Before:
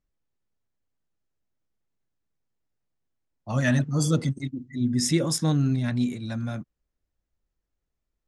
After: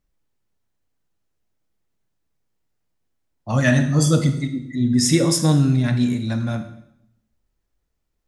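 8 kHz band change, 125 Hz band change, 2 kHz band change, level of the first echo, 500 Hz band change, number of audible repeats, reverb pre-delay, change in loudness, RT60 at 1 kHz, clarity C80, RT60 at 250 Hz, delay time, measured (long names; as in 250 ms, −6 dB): +7.0 dB, +6.5 dB, +7.0 dB, no echo audible, +7.0 dB, no echo audible, 22 ms, +6.5 dB, 0.75 s, 13.0 dB, 0.95 s, no echo audible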